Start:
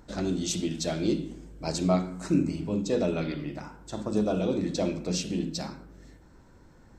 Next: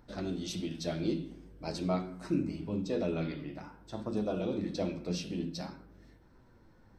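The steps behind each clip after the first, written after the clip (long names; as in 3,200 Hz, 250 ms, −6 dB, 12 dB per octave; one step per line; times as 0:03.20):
parametric band 7,200 Hz −15 dB 0.35 octaves
flanger 0.47 Hz, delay 7.8 ms, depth 4.6 ms, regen +62%
level −1.5 dB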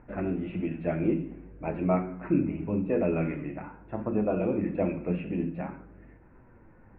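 Chebyshev low-pass filter 2,600 Hz, order 6
level +6.5 dB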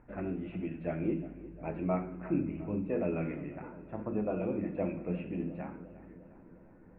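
feedback echo with a low-pass in the loop 354 ms, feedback 67%, low-pass 2,300 Hz, level −16 dB
level −6 dB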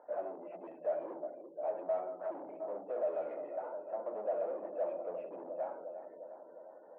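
gate on every frequency bin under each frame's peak −30 dB strong
mid-hump overdrive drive 30 dB, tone 1,000 Hz, clips at −18.5 dBFS
four-pole ladder band-pass 670 Hz, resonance 65%
level −2 dB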